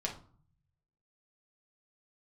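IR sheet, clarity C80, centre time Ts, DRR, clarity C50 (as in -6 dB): 14.5 dB, 17 ms, -1.0 dB, 9.0 dB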